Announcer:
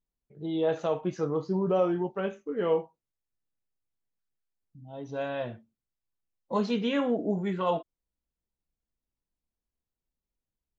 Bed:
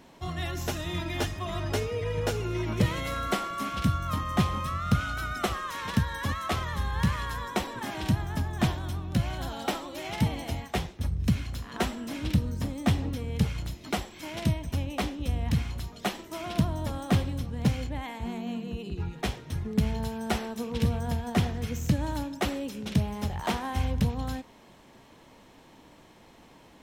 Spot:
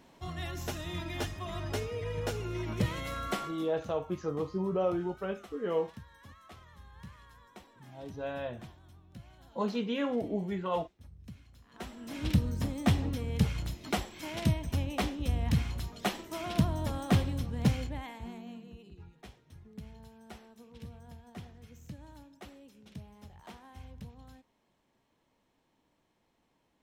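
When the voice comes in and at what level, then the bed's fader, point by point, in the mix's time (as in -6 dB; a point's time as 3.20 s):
3.05 s, -4.5 dB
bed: 3.45 s -5.5 dB
3.73 s -23 dB
11.55 s -23 dB
12.26 s -1.5 dB
17.71 s -1.5 dB
19.21 s -20.5 dB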